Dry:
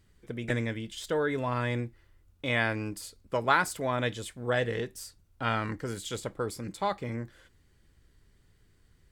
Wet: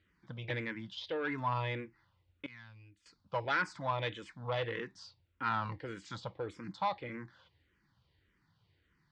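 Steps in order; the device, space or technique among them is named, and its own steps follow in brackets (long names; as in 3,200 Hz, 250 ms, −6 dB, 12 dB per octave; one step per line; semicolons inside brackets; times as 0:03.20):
barber-pole phaser into a guitar amplifier (frequency shifter mixed with the dry sound −1.7 Hz; soft clipping −24.5 dBFS, distortion −15 dB; loudspeaker in its box 110–4,600 Hz, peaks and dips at 240 Hz −7 dB, 410 Hz −9 dB, 650 Hz −5 dB, 950 Hz +5 dB)
0:02.46–0:03.06: guitar amp tone stack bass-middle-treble 6-0-2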